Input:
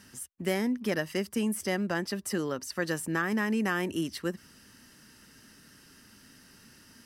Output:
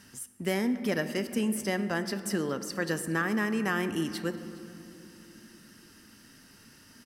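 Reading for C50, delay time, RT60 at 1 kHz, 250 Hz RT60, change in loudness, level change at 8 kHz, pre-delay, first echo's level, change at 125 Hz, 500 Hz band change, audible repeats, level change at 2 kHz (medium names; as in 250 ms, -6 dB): 11.0 dB, 412 ms, 2.7 s, 4.6 s, +0.5 dB, 0.0 dB, 4 ms, -23.0 dB, +1.0 dB, +0.5 dB, 1, +0.5 dB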